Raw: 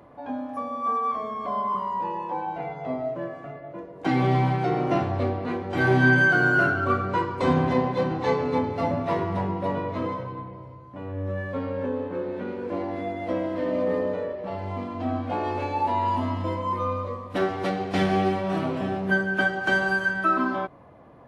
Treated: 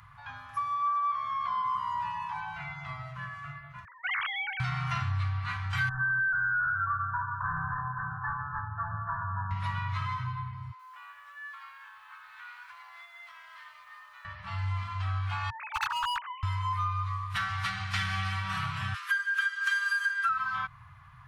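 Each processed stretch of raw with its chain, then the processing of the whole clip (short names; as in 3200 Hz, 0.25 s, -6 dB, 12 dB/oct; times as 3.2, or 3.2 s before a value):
0.74–1.65 LPF 5500 Hz + bell 77 Hz -6.5 dB 1.1 oct
3.85–4.6 sine-wave speech + tilt shelf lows -8 dB, about 1500 Hz + compressor 2.5:1, threshold -32 dBFS
5.89–9.51 low shelf 390 Hz -8.5 dB + overloaded stage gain 22.5 dB + brick-wall FIR low-pass 1800 Hz
10.71–14.25 HPF 660 Hz 24 dB/oct + compressor, threshold -44 dBFS + lo-fi delay 82 ms, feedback 35%, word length 11-bit, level -12 dB
15.5–16.43 sine-wave speech + steep high-pass 230 Hz 48 dB/oct + hard clip -24 dBFS
18.94–20.29 high shelf 6200 Hz +10 dB + frequency shift +47 Hz + brick-wall FIR high-pass 1000 Hz
whole clip: elliptic band-stop 120–1200 Hz, stop band 70 dB; compressor 4:1, threshold -34 dBFS; gain +6 dB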